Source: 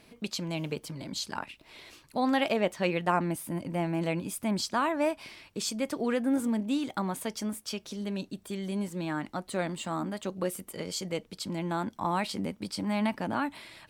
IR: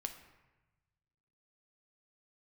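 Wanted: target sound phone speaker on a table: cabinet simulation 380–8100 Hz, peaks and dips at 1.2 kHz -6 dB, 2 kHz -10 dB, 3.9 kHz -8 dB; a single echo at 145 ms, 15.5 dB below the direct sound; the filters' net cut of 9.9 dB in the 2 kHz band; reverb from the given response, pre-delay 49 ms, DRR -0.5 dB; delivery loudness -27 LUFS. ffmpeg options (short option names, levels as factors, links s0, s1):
-filter_complex "[0:a]equalizer=f=2000:t=o:g=-7.5,aecho=1:1:145:0.168,asplit=2[s0][s1];[1:a]atrim=start_sample=2205,adelay=49[s2];[s1][s2]afir=irnorm=-1:irlink=0,volume=1.26[s3];[s0][s3]amix=inputs=2:normalize=0,highpass=f=380:w=0.5412,highpass=f=380:w=1.3066,equalizer=f=1200:t=q:w=4:g=-6,equalizer=f=2000:t=q:w=4:g=-10,equalizer=f=3900:t=q:w=4:g=-8,lowpass=f=8100:w=0.5412,lowpass=f=8100:w=1.3066,volume=2.24"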